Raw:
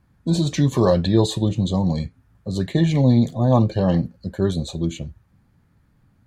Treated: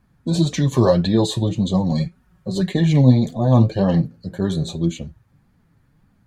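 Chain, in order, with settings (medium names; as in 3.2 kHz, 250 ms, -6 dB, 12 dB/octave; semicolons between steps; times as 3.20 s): 1.91–2.74 s: comb 5.4 ms, depth 81%; flange 1.8 Hz, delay 3.8 ms, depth 4.7 ms, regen +34%; 4.05–4.73 s: de-hum 56.44 Hz, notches 34; trim +5 dB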